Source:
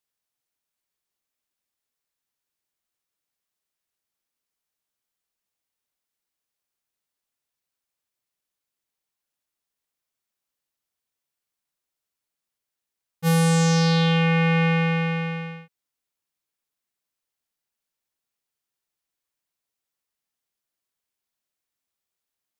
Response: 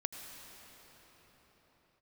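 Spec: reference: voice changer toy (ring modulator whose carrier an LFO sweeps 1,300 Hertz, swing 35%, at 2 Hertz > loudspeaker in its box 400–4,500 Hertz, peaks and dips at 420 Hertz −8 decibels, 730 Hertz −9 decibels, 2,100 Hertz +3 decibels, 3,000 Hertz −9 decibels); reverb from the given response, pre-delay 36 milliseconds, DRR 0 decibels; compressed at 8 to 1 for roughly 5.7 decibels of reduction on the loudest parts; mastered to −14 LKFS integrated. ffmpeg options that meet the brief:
-filter_complex "[0:a]acompressor=threshold=-23dB:ratio=8,asplit=2[link_01][link_02];[1:a]atrim=start_sample=2205,adelay=36[link_03];[link_02][link_03]afir=irnorm=-1:irlink=0,volume=-0.5dB[link_04];[link_01][link_04]amix=inputs=2:normalize=0,aeval=exprs='val(0)*sin(2*PI*1300*n/s+1300*0.35/2*sin(2*PI*2*n/s))':channel_layout=same,highpass=400,equalizer=frequency=420:width_type=q:width=4:gain=-8,equalizer=frequency=730:width_type=q:width=4:gain=-9,equalizer=frequency=2100:width_type=q:width=4:gain=3,equalizer=frequency=3000:width_type=q:width=4:gain=-9,lowpass=frequency=4500:width=0.5412,lowpass=frequency=4500:width=1.3066,volume=11.5dB"

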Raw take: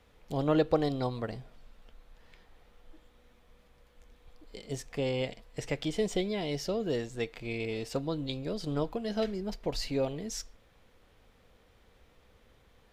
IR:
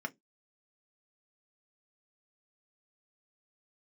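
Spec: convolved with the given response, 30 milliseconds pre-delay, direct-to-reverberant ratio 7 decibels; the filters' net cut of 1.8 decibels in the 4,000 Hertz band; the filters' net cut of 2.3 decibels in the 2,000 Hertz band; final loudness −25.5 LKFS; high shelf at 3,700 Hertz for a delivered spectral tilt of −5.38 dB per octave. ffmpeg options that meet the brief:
-filter_complex "[0:a]equalizer=frequency=2000:width_type=o:gain=-3,highshelf=frequency=3700:gain=8.5,equalizer=frequency=4000:width_type=o:gain=-7.5,asplit=2[link_01][link_02];[1:a]atrim=start_sample=2205,adelay=30[link_03];[link_02][link_03]afir=irnorm=-1:irlink=0,volume=-9dB[link_04];[link_01][link_04]amix=inputs=2:normalize=0,volume=7.5dB"

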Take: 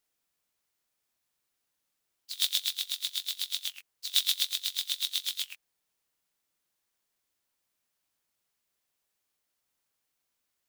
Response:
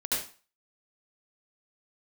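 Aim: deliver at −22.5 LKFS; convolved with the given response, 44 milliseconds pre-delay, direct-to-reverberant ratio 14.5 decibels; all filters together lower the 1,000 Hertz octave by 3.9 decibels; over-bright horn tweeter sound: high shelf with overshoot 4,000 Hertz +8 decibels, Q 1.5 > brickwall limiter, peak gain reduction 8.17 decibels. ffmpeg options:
-filter_complex "[0:a]equalizer=frequency=1000:width_type=o:gain=-4.5,asplit=2[link_01][link_02];[1:a]atrim=start_sample=2205,adelay=44[link_03];[link_02][link_03]afir=irnorm=-1:irlink=0,volume=-21.5dB[link_04];[link_01][link_04]amix=inputs=2:normalize=0,highshelf=frequency=4000:width_type=q:width=1.5:gain=8,volume=4.5dB,alimiter=limit=-5dB:level=0:latency=1"

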